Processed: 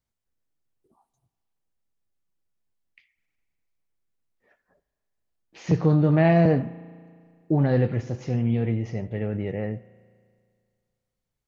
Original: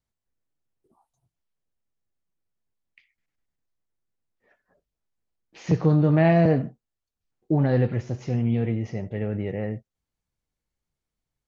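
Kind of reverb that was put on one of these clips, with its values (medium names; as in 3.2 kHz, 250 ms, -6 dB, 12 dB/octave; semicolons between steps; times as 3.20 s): spring tank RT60 2.1 s, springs 35 ms, chirp 70 ms, DRR 17.5 dB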